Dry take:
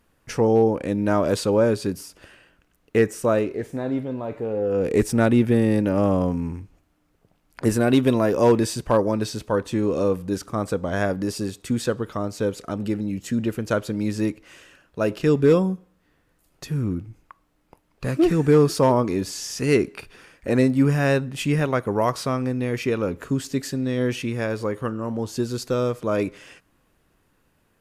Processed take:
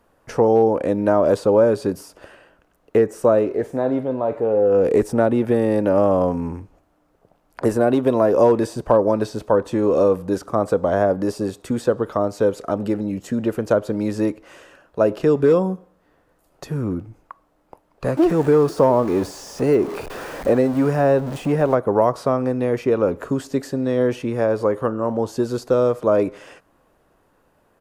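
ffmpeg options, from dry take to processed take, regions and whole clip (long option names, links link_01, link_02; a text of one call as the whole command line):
ffmpeg -i in.wav -filter_complex "[0:a]asettb=1/sr,asplit=3[link_01][link_02][link_03];[link_01]atrim=end=18.174[link_04];[link_02]atrim=start=18.17:end=21.75,asetpts=PTS-STARTPTS,afade=type=in:duration=0.004:curve=qsin,afade=type=out:start_time=3.576:duration=0.004:curve=qsin,aeval=exprs='val(0)+0.5*0.0335*sgn(val(0))':channel_layout=same,deesser=0.55[link_05];[link_03]atrim=start=21.746[link_06];[link_04][link_05]acrossfade=duration=0.004:curve1=hsin:curve2=qsin[link_07];[link_07][link_06]acrossfade=duration=0.004:curve1=qsin:curve2=hsin,acrossover=split=400|1100[link_08][link_09][link_10];[link_08]acompressor=threshold=-22dB:ratio=4[link_11];[link_09]acompressor=threshold=-26dB:ratio=4[link_12];[link_10]acompressor=threshold=-37dB:ratio=4[link_13];[link_11][link_12][link_13]amix=inputs=3:normalize=0,firequalizer=gain_entry='entry(120,0);entry(590,11);entry(2200,-1)':delay=0.05:min_phase=1" out.wav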